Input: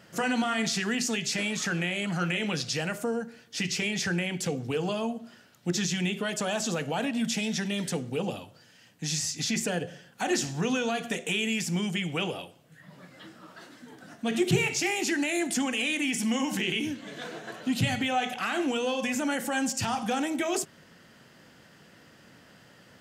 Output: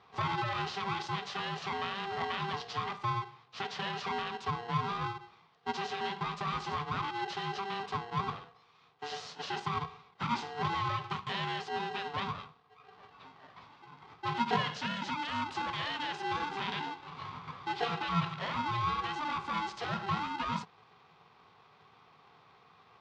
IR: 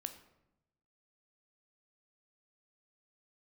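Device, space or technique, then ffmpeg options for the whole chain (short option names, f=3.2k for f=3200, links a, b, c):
ring modulator pedal into a guitar cabinet: -filter_complex "[0:a]aeval=exprs='val(0)*sgn(sin(2*PI*590*n/s))':c=same,highpass=98,equalizer=f=110:t=q:w=4:g=6,equalizer=f=160:t=q:w=4:g=10,equalizer=f=320:t=q:w=4:g=-9,equalizer=f=580:t=q:w=4:g=4,equalizer=f=1.1k:t=q:w=4:g=9,equalizer=f=2.2k:t=q:w=4:g=-3,lowpass=f=4.3k:w=0.5412,lowpass=f=4.3k:w=1.3066,asettb=1/sr,asplit=3[a][b][c];[a]atrim=end=14.724[d];[b]atrim=start=14.72:end=15.29,asetpts=PTS-STARTPTS,afade=t=in:d=0.004:c=qsin,afade=t=out:st=0.566:d=0.004:c=qsin,equalizer=f=1.1k:w=4.3:g=-7[e];[c]atrim=start=15.286[f];[d][e]acrossfade=d=0.004:c1=hsin:c2=qsin[g];[g][f]acrossfade=d=0.004:c1=qsin:c2=hsin,volume=-7.5dB"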